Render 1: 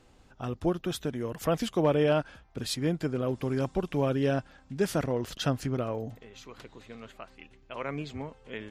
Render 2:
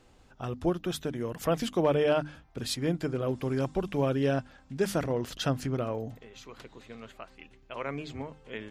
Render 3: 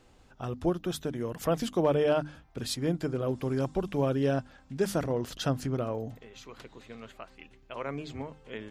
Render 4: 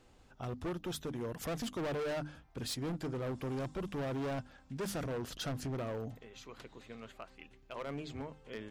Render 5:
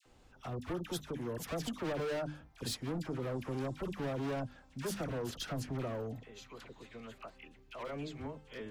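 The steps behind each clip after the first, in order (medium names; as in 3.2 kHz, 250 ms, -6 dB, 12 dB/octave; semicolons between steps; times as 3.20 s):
hum notches 50/100/150/200/250/300 Hz
dynamic bell 2.3 kHz, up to -4 dB, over -47 dBFS, Q 1.2
hard clipper -31 dBFS, distortion -6 dB; trim -3.5 dB
phase dispersion lows, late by 58 ms, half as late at 1.2 kHz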